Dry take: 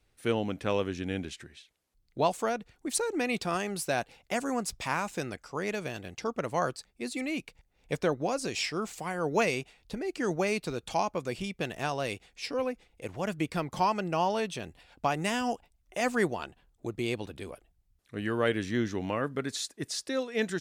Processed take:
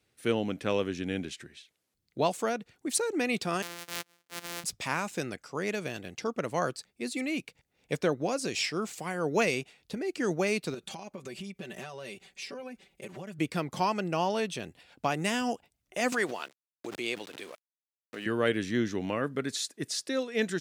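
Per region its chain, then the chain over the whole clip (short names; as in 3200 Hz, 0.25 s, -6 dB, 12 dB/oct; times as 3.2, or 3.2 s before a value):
3.62–4.64 sample sorter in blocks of 256 samples + HPF 1200 Hz 6 dB/oct + transient shaper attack -9 dB, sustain -4 dB
10.74–13.39 notch 5400 Hz, Q 24 + comb 5.2 ms, depth 97% + compressor 16:1, threshold -37 dBFS
16.12–18.26 sample gate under -47 dBFS + weighting filter A + backwards sustainer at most 80 dB/s
whole clip: HPF 120 Hz 12 dB/oct; bell 890 Hz -4 dB 1.1 oct; gain +1.5 dB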